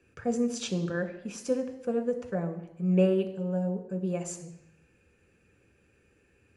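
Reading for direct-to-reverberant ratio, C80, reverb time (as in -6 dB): 5.0 dB, 12.5 dB, 0.85 s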